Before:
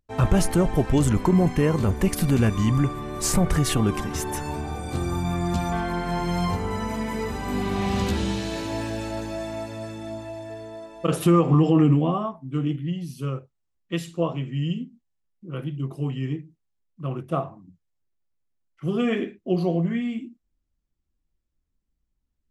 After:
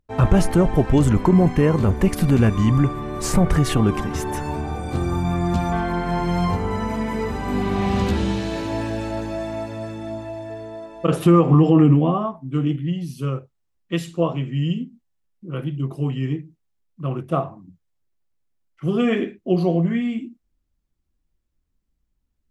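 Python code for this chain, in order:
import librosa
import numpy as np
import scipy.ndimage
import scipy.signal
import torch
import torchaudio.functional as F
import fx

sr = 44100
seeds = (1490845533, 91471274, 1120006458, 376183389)

y = fx.high_shelf(x, sr, hz=3600.0, db=fx.steps((0.0, -8.5), (12.33, -2.5)))
y = F.gain(torch.from_numpy(y), 4.0).numpy()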